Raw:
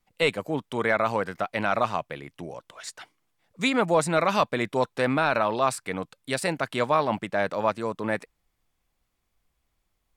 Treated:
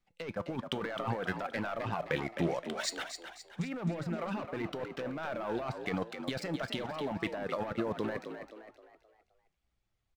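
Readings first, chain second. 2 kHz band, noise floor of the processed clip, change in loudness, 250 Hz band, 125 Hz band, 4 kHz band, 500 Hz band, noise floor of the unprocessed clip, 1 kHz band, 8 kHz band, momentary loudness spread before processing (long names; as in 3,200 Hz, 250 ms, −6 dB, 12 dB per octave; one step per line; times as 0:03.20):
−11.0 dB, −79 dBFS, −10.5 dB, −6.0 dB, −4.5 dB, −7.5 dB, −10.5 dB, −76 dBFS, −13.0 dB, −8.5 dB, 16 LU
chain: reverb reduction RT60 0.65 s
treble cut that deepens with the level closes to 1,800 Hz, closed at −22 dBFS
low-pass filter 6,600 Hz
parametric band 1,000 Hz −5.5 dB 0.23 octaves
leveller curve on the samples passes 2
compressor whose output falls as the input rises −28 dBFS, ratio −1
tuned comb filter 170 Hz, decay 0.3 s, harmonics all, mix 50%
on a send: echo with shifted repeats 261 ms, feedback 41%, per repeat +55 Hz, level −8.5 dB
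on the sum: level −3 dB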